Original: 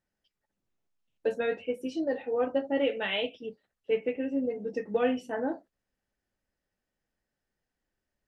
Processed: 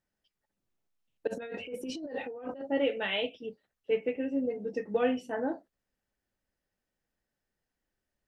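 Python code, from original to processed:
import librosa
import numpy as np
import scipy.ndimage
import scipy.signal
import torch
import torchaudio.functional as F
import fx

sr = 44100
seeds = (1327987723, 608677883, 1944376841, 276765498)

y = fx.over_compress(x, sr, threshold_db=-38.0, ratio=-1.0, at=(1.27, 2.61))
y = y * librosa.db_to_amplitude(-1.0)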